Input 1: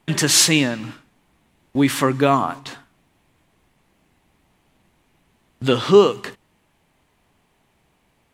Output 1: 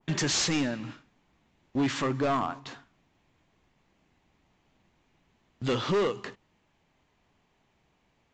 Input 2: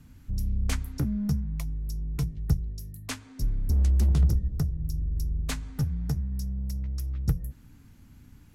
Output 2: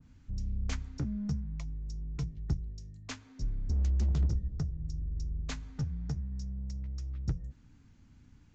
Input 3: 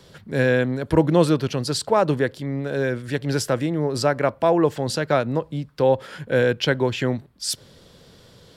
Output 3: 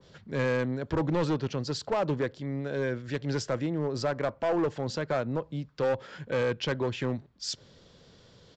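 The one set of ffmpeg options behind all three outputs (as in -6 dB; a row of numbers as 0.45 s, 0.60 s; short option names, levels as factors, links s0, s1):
-af "aresample=16000,asoftclip=type=hard:threshold=0.158,aresample=44100,adynamicequalizer=threshold=0.0158:dfrequency=1800:dqfactor=0.7:tfrequency=1800:tqfactor=0.7:attack=5:release=100:ratio=0.375:range=2:mode=cutabove:tftype=highshelf,volume=0.473"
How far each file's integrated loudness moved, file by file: -11.5 LU, -6.5 LU, -8.5 LU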